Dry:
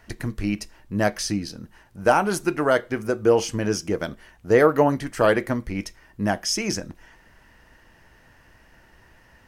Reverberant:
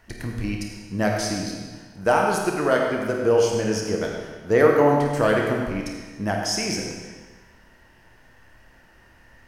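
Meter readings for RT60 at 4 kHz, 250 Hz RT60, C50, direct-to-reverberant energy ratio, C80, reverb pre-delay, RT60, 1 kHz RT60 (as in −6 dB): 1.3 s, 1.4 s, 1.5 dB, 0.0 dB, 3.0 dB, 28 ms, 1.4 s, 1.4 s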